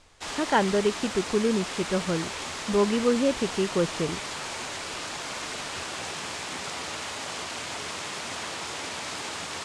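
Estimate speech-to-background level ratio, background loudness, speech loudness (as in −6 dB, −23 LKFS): 6.5 dB, −33.0 LKFS, −26.5 LKFS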